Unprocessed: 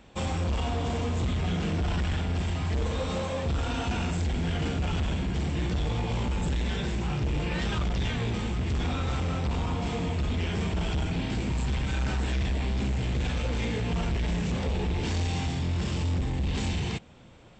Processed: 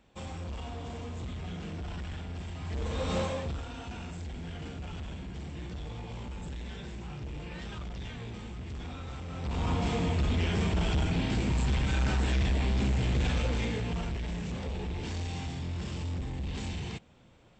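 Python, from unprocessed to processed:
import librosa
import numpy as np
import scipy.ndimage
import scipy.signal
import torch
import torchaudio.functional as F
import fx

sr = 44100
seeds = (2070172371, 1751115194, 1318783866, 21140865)

y = fx.gain(x, sr, db=fx.line((2.54, -10.5), (3.2, 1.0), (3.68, -11.5), (9.27, -11.5), (9.69, 0.5), (13.37, 0.5), (14.22, -7.0)))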